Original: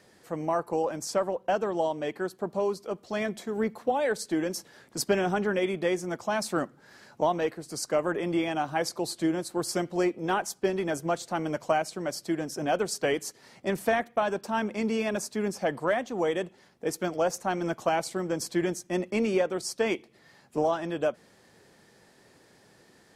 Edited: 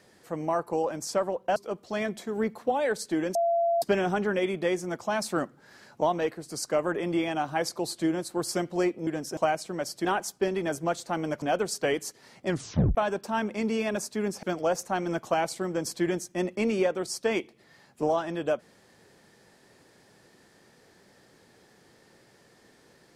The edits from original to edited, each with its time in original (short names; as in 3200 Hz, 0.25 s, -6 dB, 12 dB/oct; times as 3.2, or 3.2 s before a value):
1.56–2.76 cut
4.55–5.02 bleep 680 Hz -21.5 dBFS
10.27–11.64 swap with 12.32–12.62
13.67 tape stop 0.48 s
15.63–16.98 cut